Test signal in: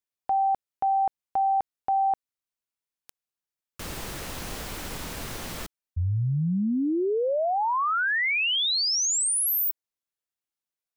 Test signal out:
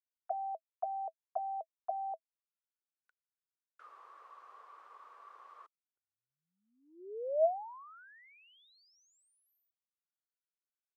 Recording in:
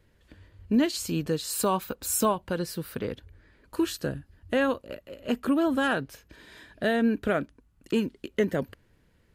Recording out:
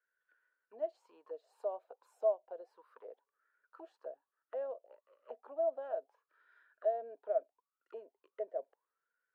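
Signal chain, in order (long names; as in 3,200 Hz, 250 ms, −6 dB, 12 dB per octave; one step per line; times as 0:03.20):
four-pole ladder high-pass 380 Hz, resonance 50%
envelope filter 650–1,500 Hz, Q 16, down, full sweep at −32 dBFS
level +7 dB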